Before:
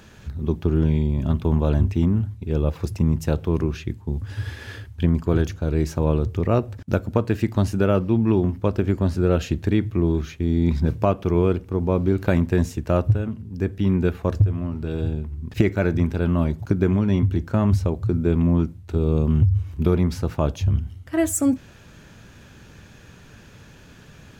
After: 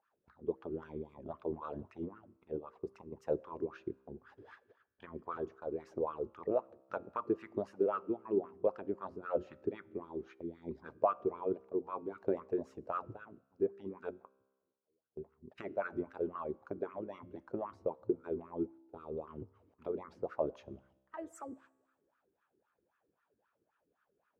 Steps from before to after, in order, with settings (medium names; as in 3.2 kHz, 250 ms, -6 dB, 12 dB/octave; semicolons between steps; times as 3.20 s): 0.73–1.14 s: tone controls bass +3 dB, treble +7 dB; 2.56–3.12 s: compression 6:1, threshold -21 dBFS, peak gain reduction 7.5 dB; 14.10–15.17 s: inverted gate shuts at -24 dBFS, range -25 dB; de-hum 45.09 Hz, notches 8; gate -33 dBFS, range -15 dB; wah-wah 3.8 Hz 370–1300 Hz, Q 4.7; harmonic-percussive split harmonic -16 dB; feedback comb 66 Hz, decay 1.3 s, harmonics all, mix 30%; trim +1.5 dB